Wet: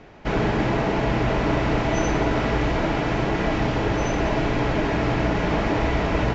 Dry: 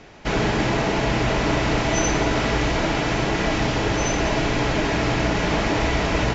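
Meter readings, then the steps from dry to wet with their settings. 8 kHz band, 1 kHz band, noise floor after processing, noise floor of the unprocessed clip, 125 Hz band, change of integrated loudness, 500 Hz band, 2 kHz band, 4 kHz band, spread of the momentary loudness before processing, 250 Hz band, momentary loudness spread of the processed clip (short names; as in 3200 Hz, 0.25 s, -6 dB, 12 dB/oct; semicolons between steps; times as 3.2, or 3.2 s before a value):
n/a, -1.0 dB, -25 dBFS, -24 dBFS, 0.0 dB, -1.0 dB, -0.5 dB, -3.5 dB, -6.5 dB, 1 LU, 0.0 dB, 1 LU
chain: LPF 1800 Hz 6 dB/oct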